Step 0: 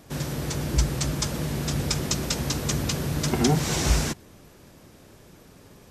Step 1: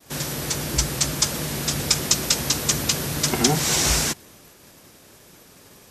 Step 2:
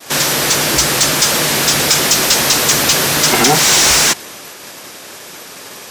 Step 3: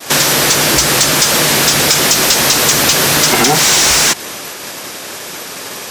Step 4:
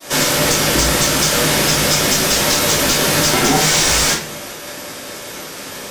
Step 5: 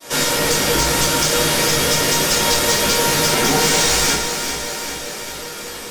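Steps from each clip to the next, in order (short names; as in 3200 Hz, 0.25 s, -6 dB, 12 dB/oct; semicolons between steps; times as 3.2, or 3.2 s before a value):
expander -48 dBFS; tilt +2 dB/oct; gain +3.5 dB
overdrive pedal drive 26 dB, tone 6900 Hz, clips at -1 dBFS
compressor, threshold -15 dBFS, peak gain reduction 7 dB; gain +6.5 dB
shoebox room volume 37 m³, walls mixed, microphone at 2.5 m; gain -16 dB
resonator 470 Hz, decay 0.23 s, harmonics all, mix 80%; echo with dull and thin repeats by turns 0.198 s, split 810 Hz, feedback 79%, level -6 dB; gain +8.5 dB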